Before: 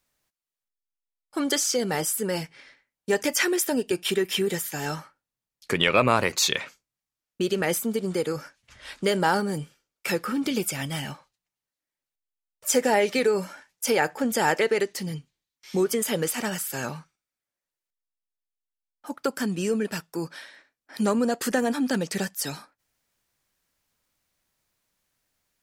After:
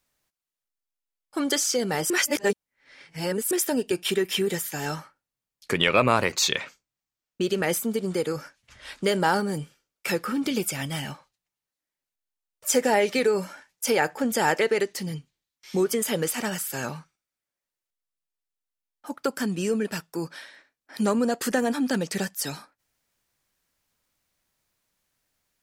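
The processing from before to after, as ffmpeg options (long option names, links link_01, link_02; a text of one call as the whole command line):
ffmpeg -i in.wav -filter_complex "[0:a]asettb=1/sr,asplit=3[link_01][link_02][link_03];[link_01]atrim=end=6.254[link_04];[link_02]atrim=start=6.25:end=7.49,asetpts=PTS-STARTPTS,afade=type=in:duration=0.004:curve=qsin,afade=type=out:start_time=1.236:duration=0.004:curve=qsin,equalizer=frequency=11000:width_type=o:width=0.33:gain=-9[link_05];[link_03]atrim=start=7.486[link_06];[link_04][link_05]acrossfade=duration=0.004:curve1=hsin:curve2=qsin[link_07];[link_07][link_06]acrossfade=duration=0.004:curve1=qsin:curve2=hsin,asplit=3[link_08][link_09][link_10];[link_08]atrim=end=2.102[link_11];[link_09]atrim=start=2.098:end=3.512,asetpts=PTS-STARTPTS,areverse[link_12];[link_10]atrim=start=3.508[link_13];[link_11][link_12]acrossfade=duration=0.004:curve1=hsin:curve2=hsin[link_14];[link_14][link_13]acrossfade=duration=0.004:curve1=hsin:curve2=hsin" out.wav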